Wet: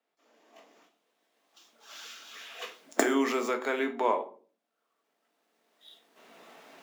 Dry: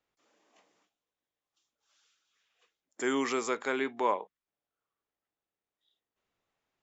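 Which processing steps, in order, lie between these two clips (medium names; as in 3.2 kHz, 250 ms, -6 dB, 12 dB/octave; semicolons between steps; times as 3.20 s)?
median filter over 5 samples; recorder AGC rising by 13 dB/s; high-pass 210 Hz 24 dB/octave; peaking EQ 650 Hz +5 dB 0.4 oct; on a send: reverberation RT60 0.40 s, pre-delay 4 ms, DRR 5 dB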